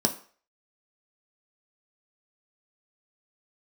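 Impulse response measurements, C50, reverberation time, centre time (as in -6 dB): 14.0 dB, 0.45 s, 10 ms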